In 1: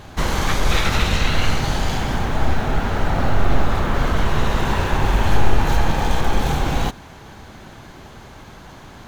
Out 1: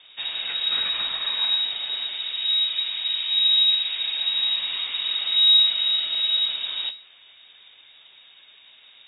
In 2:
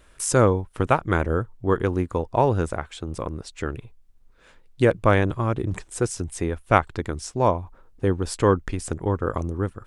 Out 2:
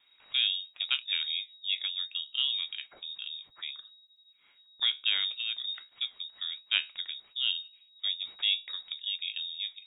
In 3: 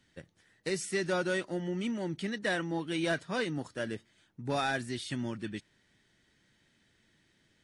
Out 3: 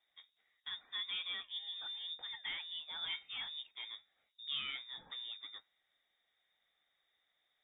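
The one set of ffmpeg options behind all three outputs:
-af "flanger=delay=7.1:depth=6.8:regen=70:speed=1.1:shape=sinusoidal,lowpass=f=3200:t=q:w=0.5098,lowpass=f=3200:t=q:w=0.6013,lowpass=f=3200:t=q:w=0.9,lowpass=f=3200:t=q:w=2.563,afreqshift=-3800,volume=0.473"

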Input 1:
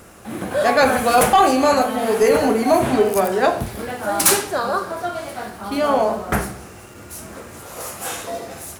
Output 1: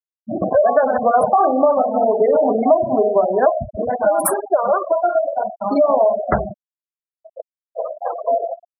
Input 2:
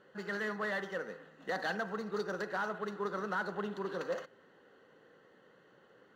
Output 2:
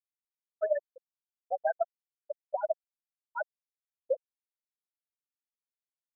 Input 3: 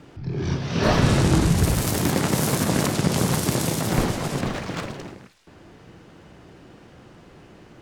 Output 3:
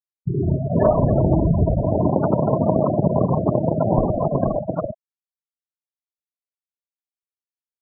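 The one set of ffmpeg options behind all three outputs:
-af "equalizer=f=630:t=o:w=0.33:g=12,equalizer=f=1000:t=o:w=0.33:g=4,equalizer=f=3150:t=o:w=0.33:g=-9,equalizer=f=6300:t=o:w=0.33:g=-9,aeval=exprs='sgn(val(0))*max(abs(val(0))-0.0126,0)':c=same,agate=range=0.0708:threshold=0.02:ratio=16:detection=peak,acompressor=threshold=0.0891:ratio=4,afftfilt=real='re*gte(hypot(re,im),0.1)':imag='im*gte(hypot(re,im),0.1)':win_size=1024:overlap=0.75,volume=2.37"

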